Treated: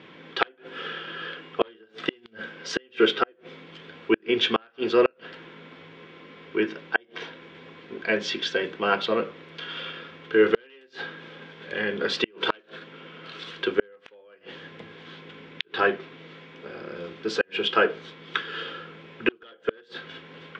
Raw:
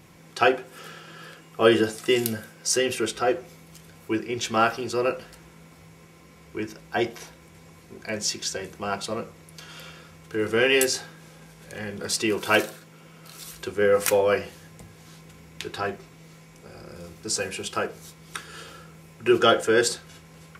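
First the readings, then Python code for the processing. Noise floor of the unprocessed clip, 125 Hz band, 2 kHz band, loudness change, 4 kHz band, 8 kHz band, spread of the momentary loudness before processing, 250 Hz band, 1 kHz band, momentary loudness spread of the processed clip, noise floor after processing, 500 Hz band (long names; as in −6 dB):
−51 dBFS, −7.0 dB, 0.0 dB, −2.5 dB, 0.0 dB, below −15 dB, 22 LU, −2.0 dB, −2.5 dB, 22 LU, −57 dBFS, −2.0 dB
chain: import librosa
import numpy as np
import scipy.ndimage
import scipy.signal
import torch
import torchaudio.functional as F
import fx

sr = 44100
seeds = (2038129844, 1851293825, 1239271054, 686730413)

y = np.minimum(x, 2.0 * 10.0 ** (-13.0 / 20.0) - x)
y = fx.cabinet(y, sr, low_hz=240.0, low_slope=12, high_hz=3500.0, hz=(270.0, 440.0, 750.0, 1600.0, 3300.0), db=(4, 4, -5, 5, 9))
y = fx.gate_flip(y, sr, shuts_db=-13.0, range_db=-38)
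y = y * librosa.db_to_amplitude(5.5)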